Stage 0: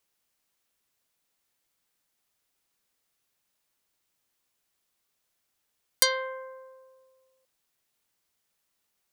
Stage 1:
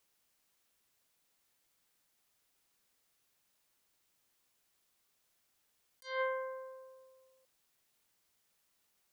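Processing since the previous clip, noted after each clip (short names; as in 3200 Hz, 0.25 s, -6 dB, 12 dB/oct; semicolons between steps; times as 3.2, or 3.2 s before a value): negative-ratio compressor -33 dBFS, ratio -0.5; gain -4 dB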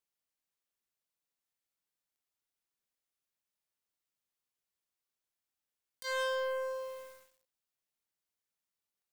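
sample leveller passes 5; gain -5 dB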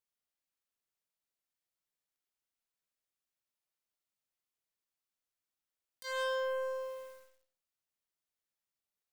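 reverb RT60 0.30 s, pre-delay 35 ms, DRR 6.5 dB; gain -3.5 dB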